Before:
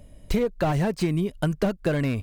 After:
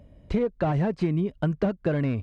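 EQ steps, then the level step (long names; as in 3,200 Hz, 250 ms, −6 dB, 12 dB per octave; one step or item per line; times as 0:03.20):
high-pass filter 46 Hz
head-to-tape spacing loss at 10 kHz 25 dB
0.0 dB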